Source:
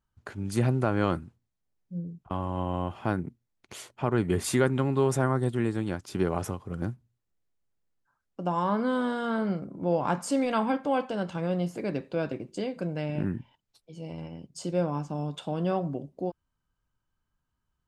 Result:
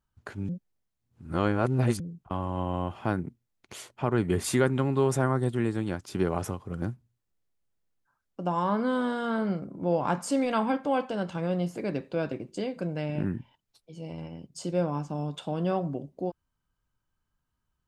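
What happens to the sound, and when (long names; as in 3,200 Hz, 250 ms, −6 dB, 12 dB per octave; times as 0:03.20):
0:00.49–0:02.00: reverse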